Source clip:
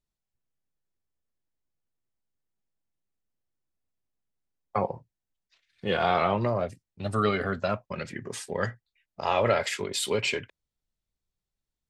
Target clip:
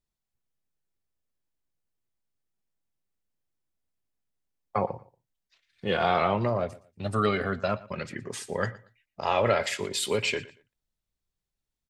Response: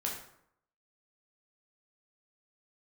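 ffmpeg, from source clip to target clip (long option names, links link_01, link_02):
-af "aecho=1:1:117|234:0.1|0.023"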